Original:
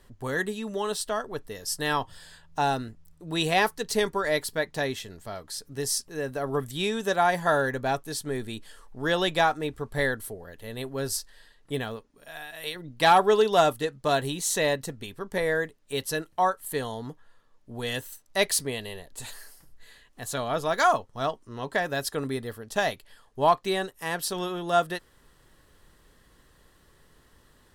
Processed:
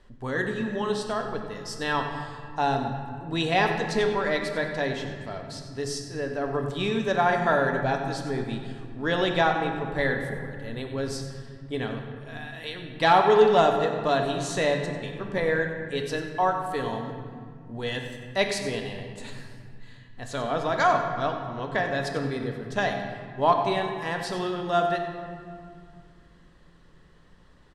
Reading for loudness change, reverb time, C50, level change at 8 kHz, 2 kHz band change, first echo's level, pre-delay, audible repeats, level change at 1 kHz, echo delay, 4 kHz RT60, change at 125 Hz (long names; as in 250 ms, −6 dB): +1.0 dB, 2.2 s, 5.0 dB, −9.0 dB, +1.0 dB, −12.0 dB, 3 ms, 1, +1.0 dB, 95 ms, 1.3 s, +3.5 dB